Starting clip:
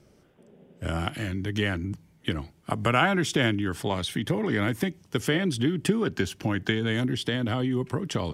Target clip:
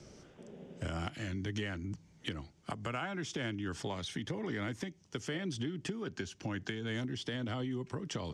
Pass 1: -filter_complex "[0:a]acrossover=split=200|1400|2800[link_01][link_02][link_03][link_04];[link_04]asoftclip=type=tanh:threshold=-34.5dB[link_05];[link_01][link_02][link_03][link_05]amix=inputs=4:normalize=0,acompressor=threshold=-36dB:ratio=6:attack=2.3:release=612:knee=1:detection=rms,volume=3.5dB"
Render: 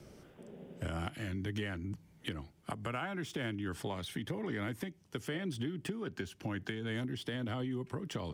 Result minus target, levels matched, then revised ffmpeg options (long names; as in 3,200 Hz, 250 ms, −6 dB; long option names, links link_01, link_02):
8,000 Hz band −3.5 dB
-filter_complex "[0:a]acrossover=split=200|1400|2800[link_01][link_02][link_03][link_04];[link_04]asoftclip=type=tanh:threshold=-34.5dB[link_05];[link_01][link_02][link_03][link_05]amix=inputs=4:normalize=0,acompressor=threshold=-36dB:ratio=6:attack=2.3:release=612:knee=1:detection=rms,lowpass=frequency=6400:width_type=q:width=2.3,volume=3.5dB"